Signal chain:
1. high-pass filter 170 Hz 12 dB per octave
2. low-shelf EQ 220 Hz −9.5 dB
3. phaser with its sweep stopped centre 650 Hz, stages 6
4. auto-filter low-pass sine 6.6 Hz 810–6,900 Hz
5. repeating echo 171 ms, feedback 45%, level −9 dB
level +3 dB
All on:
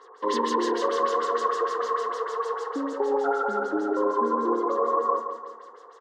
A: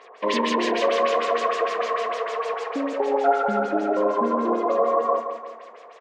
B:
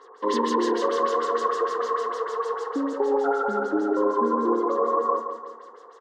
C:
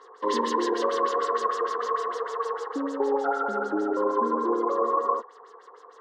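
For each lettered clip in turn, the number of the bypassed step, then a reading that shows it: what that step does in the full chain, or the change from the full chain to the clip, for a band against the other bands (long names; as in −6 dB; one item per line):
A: 3, 4 kHz band +4.0 dB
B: 2, 250 Hz band +3.0 dB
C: 5, echo-to-direct ratio −8.0 dB to none audible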